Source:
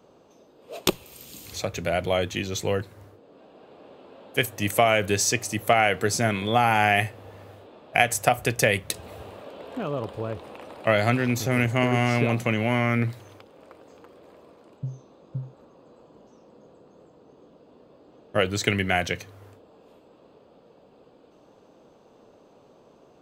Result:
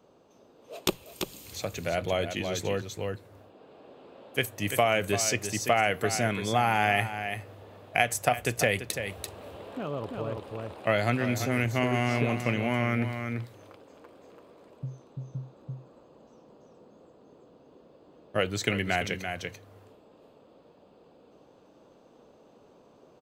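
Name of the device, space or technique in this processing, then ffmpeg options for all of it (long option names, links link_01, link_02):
ducked delay: -filter_complex "[0:a]asplit=3[link_01][link_02][link_03];[link_02]adelay=339,volume=-2dB[link_04];[link_03]apad=whole_len=1038524[link_05];[link_04][link_05]sidechaincompress=threshold=-24dB:ratio=8:attack=11:release=829[link_06];[link_01][link_06]amix=inputs=2:normalize=0,volume=-4.5dB"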